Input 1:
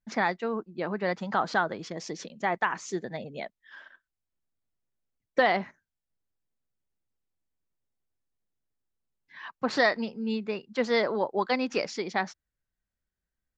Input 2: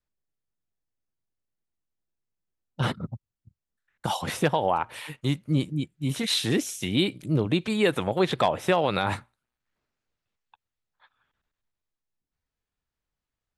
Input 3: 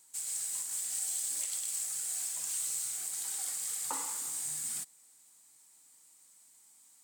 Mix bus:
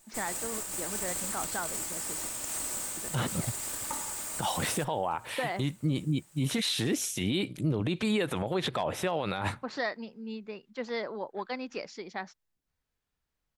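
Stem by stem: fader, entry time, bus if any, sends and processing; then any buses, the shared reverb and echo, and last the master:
-9.0 dB, 0.00 s, muted 2.31–2.97 s, no send, none
+2.0 dB, 0.35 s, no send, peak limiter -16 dBFS, peak gain reduction 6 dB
+2.0 dB, 0.00 s, no send, comb filter that takes the minimum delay 3.3 ms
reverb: none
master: peak limiter -20.5 dBFS, peak gain reduction 7.5 dB

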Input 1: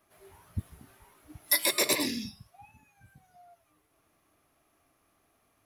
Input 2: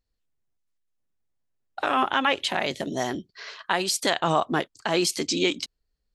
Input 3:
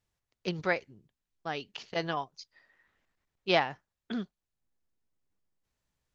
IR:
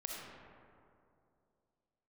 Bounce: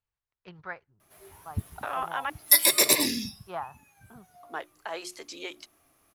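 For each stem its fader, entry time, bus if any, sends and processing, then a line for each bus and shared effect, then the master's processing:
+2.5 dB, 1.00 s, no send, none
-7.5 dB, 0.00 s, muted 2.30–4.43 s, no send, three-band isolator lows -22 dB, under 460 Hz, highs -12 dB, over 2.1 kHz; hum notches 60/120/180/240/300/360 Hz
-7.5 dB, 0.00 s, no send, graphic EQ 250/500/1000/2000 Hz -12/-7/+3/-10 dB; LFO low-pass saw down 0.43 Hz 750–2400 Hz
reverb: none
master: treble shelf 5.8 kHz +7 dB

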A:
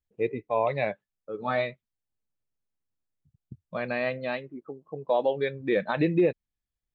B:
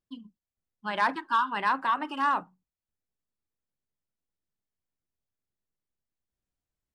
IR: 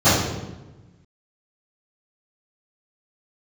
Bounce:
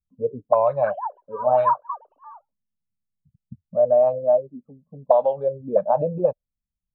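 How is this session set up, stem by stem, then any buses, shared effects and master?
+1.5 dB, 0.00 s, no send, none
+1.5 dB, 0.00 s, no send, formants replaced by sine waves; high-pass 1.1 kHz 12 dB/octave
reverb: none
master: peaking EQ 580 Hz +8.5 dB 0.3 oct; static phaser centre 820 Hz, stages 4; touch-sensitive low-pass 200–1600 Hz up, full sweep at -18 dBFS

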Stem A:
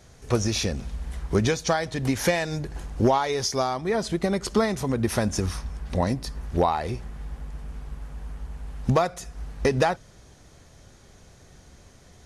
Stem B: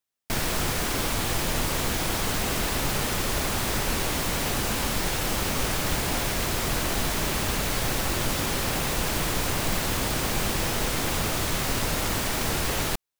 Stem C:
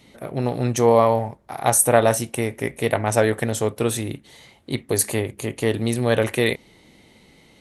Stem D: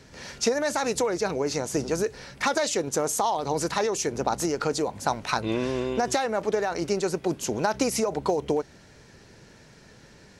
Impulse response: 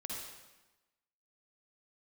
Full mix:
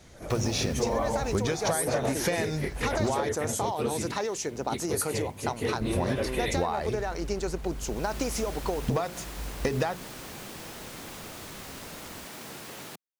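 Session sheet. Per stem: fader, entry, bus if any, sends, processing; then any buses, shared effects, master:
-1.0 dB, 0.00 s, muted 3.29–5.81 s, no send, companded quantiser 8-bit; hum notches 60/120/180/240/300/360/420 Hz
-13.5 dB, 0.00 s, no send, Chebyshev high-pass 180 Hz, order 2; auto duck -17 dB, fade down 1.95 s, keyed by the third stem
-8.0 dB, 0.00 s, no send, phase randomisation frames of 50 ms
-5.0 dB, 0.40 s, no send, none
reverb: none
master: compression 10:1, threshold -23 dBFS, peak gain reduction 8.5 dB

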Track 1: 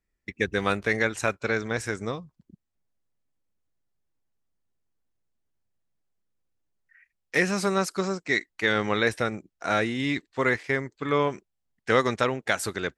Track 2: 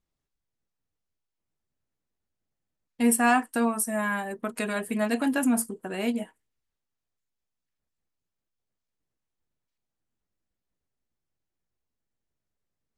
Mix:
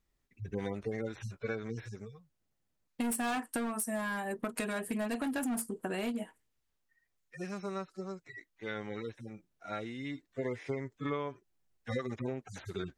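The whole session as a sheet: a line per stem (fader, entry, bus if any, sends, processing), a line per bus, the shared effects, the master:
1.97 s -1.5 dB -> 2.27 s -12.5 dB -> 10.10 s -12.5 dB -> 10.57 s -1 dB, 0.00 s, no send, harmonic-percussive separation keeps harmonic; auto duck -15 dB, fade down 1.60 s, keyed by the second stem
+2.5 dB, 0.00 s, no send, hard clipper -22.5 dBFS, distortion -10 dB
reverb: none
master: compression 10:1, threshold -32 dBFS, peak gain reduction 13 dB

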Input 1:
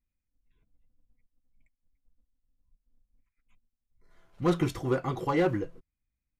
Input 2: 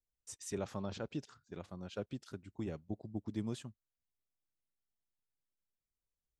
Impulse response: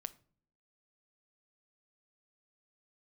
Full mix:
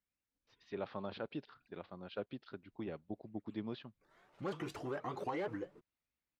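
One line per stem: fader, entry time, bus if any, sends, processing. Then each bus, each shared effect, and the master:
+1.0 dB, 0.00 s, no send, peak limiter -21 dBFS, peak gain reduction 4.5 dB; compression 2.5:1, threshold -38 dBFS, peak gain reduction 9 dB; vibrato with a chosen wave saw up 4.2 Hz, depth 250 cents
-6.5 dB, 0.20 s, no send, level rider gain up to 9 dB; steep low-pass 4.5 kHz 48 dB/octave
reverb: none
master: high-pass 390 Hz 6 dB/octave; treble shelf 5.2 kHz -9.5 dB

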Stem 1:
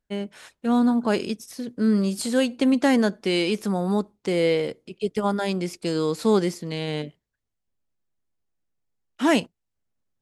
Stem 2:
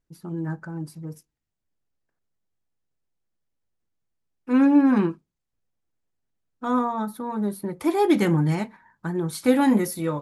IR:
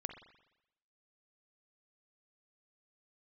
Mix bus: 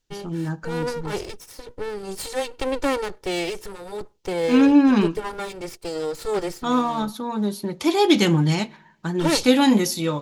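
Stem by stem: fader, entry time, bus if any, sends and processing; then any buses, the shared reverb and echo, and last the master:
0.0 dB, 0.00 s, no send, comb filter that takes the minimum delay 2.2 ms
+1.0 dB, 0.00 s, send -14.5 dB, high-order bell 4.3 kHz +12 dB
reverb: on, RT60 0.90 s, pre-delay 42 ms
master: none

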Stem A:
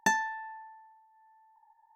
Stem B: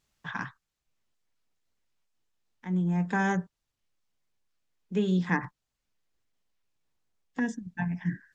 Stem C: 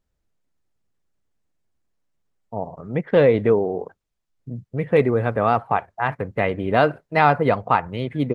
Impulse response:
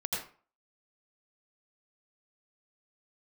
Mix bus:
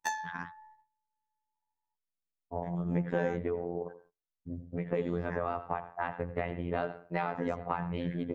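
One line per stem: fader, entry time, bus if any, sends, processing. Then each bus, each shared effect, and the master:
+0.5 dB, 0.00 s, no send, high-pass 600 Hz 12 dB/octave; flange 1.1 Hz, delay 8.7 ms, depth 2.6 ms, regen -87%
-8.5 dB, 0.00 s, no send, treble shelf 5.5 kHz -11 dB; gain riding within 5 dB 2 s
-4.0 dB, 0.00 s, send -14.5 dB, treble shelf 4 kHz -10.5 dB; compression 10:1, threshold -24 dBFS, peak gain reduction 14 dB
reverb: on, RT60 0.40 s, pre-delay 77 ms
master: gate -57 dBFS, range -20 dB; robot voice 86.7 Hz

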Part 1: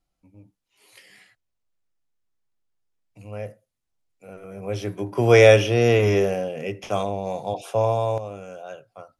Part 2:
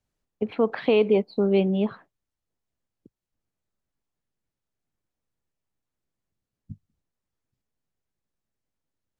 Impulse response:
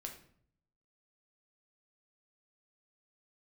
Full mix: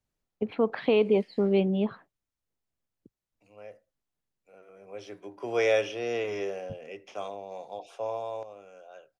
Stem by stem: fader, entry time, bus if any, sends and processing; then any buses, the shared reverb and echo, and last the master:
-11.0 dB, 0.25 s, no send, three-band isolator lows -18 dB, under 270 Hz, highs -19 dB, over 7.9 kHz
-3.0 dB, 0.00 s, no send, none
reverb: none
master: none

